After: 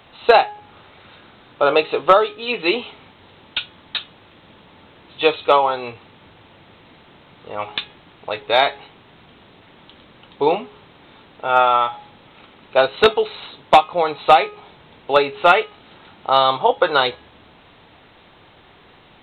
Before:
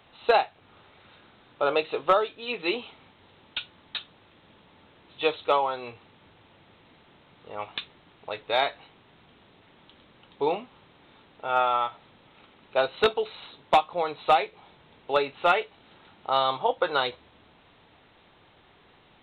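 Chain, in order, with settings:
hum removal 417 Hz, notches 8
level +9 dB

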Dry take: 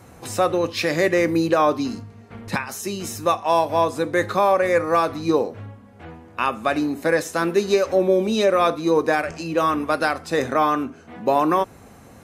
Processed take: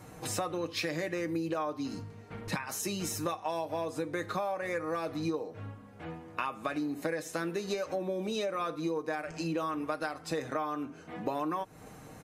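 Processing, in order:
comb filter 6.5 ms, depth 50%
downward compressor 12 to 1, threshold −26 dBFS, peak gain reduction 16.5 dB
level −4 dB

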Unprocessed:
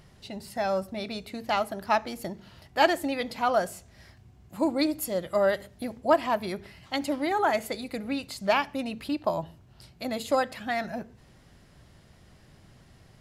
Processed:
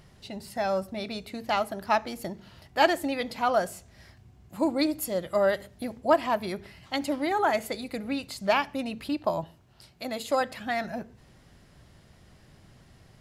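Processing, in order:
0:09.44–0:10.41: low-shelf EQ 250 Hz −7 dB

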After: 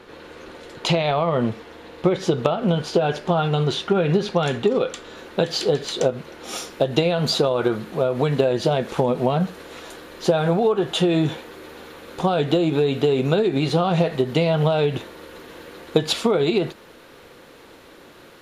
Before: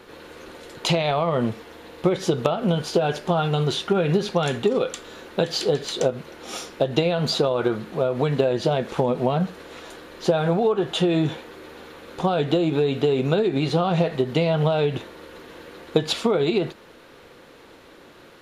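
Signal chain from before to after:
high-shelf EQ 9,200 Hz −11 dB, from 0:05.17 −3 dB, from 0:06.44 +6 dB
level +1.5 dB

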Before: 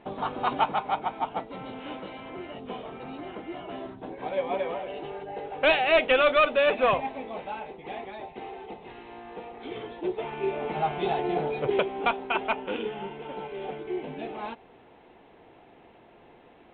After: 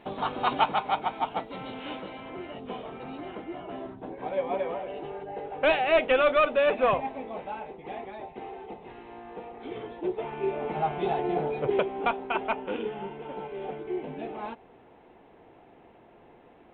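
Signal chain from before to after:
high-shelf EQ 3,200 Hz +8 dB, from 0:02.02 −2 dB, from 0:03.44 −11 dB

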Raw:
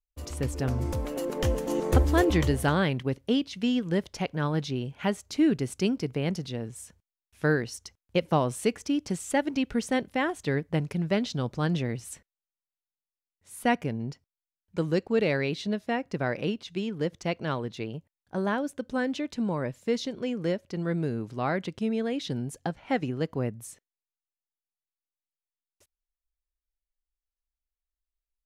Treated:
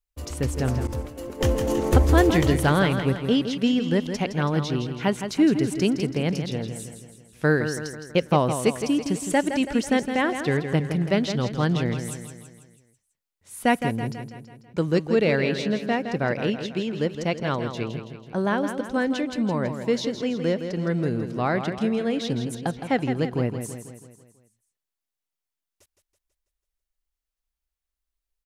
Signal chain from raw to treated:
repeating echo 164 ms, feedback 52%, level −8.5 dB
0:00.87–0:01.41: downward expander −23 dBFS
level +4 dB

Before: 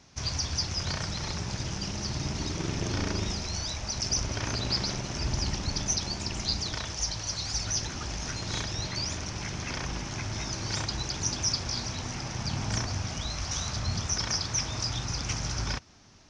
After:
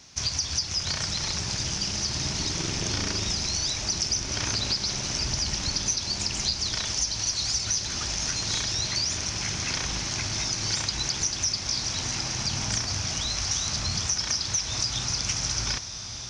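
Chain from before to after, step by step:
high-shelf EQ 2,300 Hz +11.5 dB
downward compressor, threshold −24 dBFS, peak gain reduction 10 dB
on a send: feedback delay with all-pass diffusion 1,280 ms, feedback 45%, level −9 dB

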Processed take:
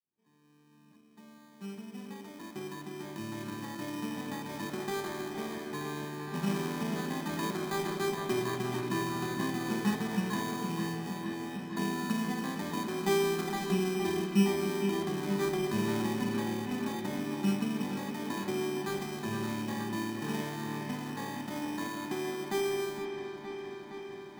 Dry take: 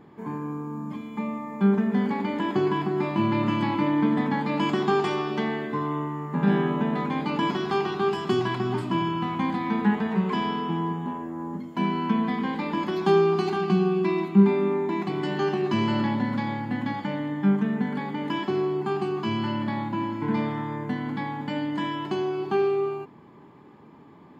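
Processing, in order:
fade in at the beginning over 7.92 s
decimation without filtering 16×
delay with a low-pass on its return 465 ms, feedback 76%, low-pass 3,700 Hz, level −8 dB
level −8.5 dB

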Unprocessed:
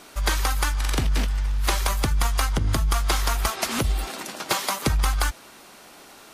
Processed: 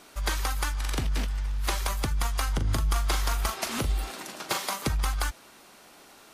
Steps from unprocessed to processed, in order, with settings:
0:02.43–0:04.87: double-tracking delay 40 ms −9.5 dB
level −5.5 dB

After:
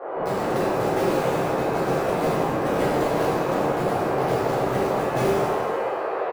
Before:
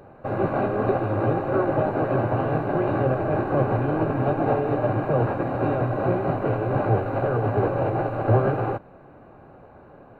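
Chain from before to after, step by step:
sub-octave generator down 1 octave, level +1 dB
time stretch by overlap-add 0.62×, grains 34 ms
on a send: single-tap delay 232 ms −21 dB
on the sum: steady tone 1,200 Hz −37 dBFS
band-pass filter 190–2,300 Hz
harmonic generator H 3 −11 dB, 5 −38 dB, 6 −33 dB, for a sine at −8.5 dBFS
in parallel at −7 dB: wrap-around overflow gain 23.5 dB
on the sum: noise in a band 380–1,100 Hz −31 dBFS
parametric band 1,000 Hz −13 dB 0.4 octaves
reverb with rising layers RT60 1.4 s, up +7 semitones, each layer −8 dB, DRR −11.5 dB
level −4.5 dB

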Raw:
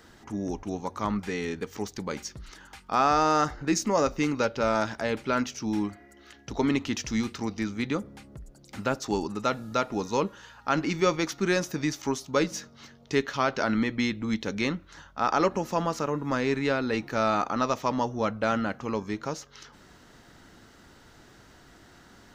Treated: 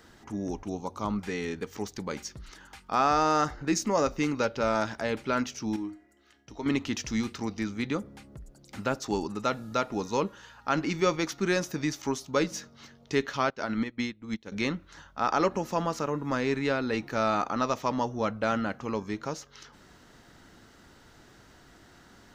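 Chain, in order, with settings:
0:00.68–0:01.18: parametric band 1,800 Hz −15 dB 0.46 octaves
0:05.76–0:06.66: tuned comb filter 310 Hz, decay 0.4 s, harmonics all, mix 70%
0:13.50–0:14.52: expander for the loud parts 2.5 to 1, over −36 dBFS
level −1.5 dB

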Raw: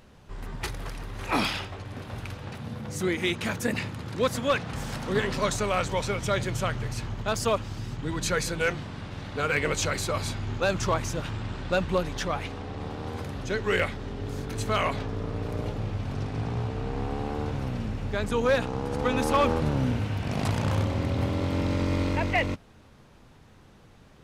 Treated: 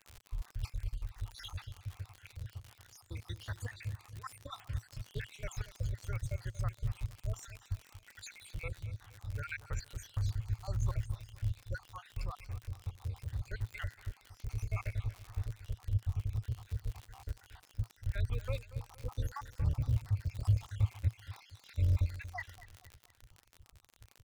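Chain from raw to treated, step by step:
time-frequency cells dropped at random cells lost 72%
drawn EQ curve 110 Hz 0 dB, 200 Hz −27 dB, 1,700 Hz −14 dB
0:04.04–0:04.56: compressor whose output falls as the input rises −46 dBFS, ratio −0.5
surface crackle 68 per second −41 dBFS
repeating echo 234 ms, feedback 39%, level −16 dB
level +2 dB

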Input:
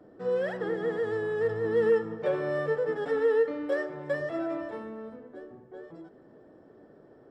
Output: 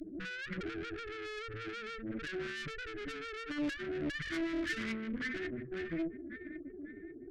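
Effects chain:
spectral peaks only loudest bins 4
0:03.44–0:04.23: parametric band 830 Hz → 200 Hz +14.5 dB 1.8 octaves
delay with a high-pass on its return 548 ms, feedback 46%, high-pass 1,600 Hz, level −4.5 dB
downward compressor 10 to 1, threshold −37 dBFS, peak gain reduction 24.5 dB
high-shelf EQ 2,400 Hz +11.5 dB
tube saturation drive 48 dB, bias 0.55
Chebyshev band-stop filter 340–1,500 Hz, order 3
highs frequency-modulated by the lows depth 0.39 ms
level +17.5 dB

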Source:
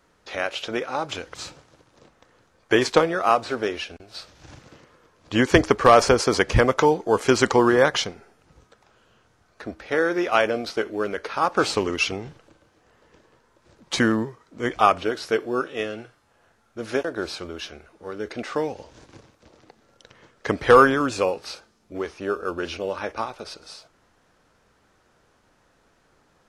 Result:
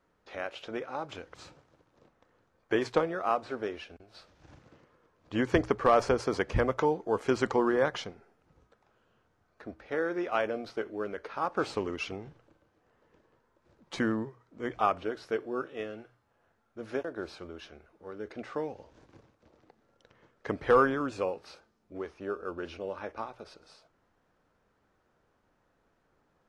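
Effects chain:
high-shelf EQ 2,900 Hz −11 dB
mains-hum notches 60/120 Hz
level −8.5 dB

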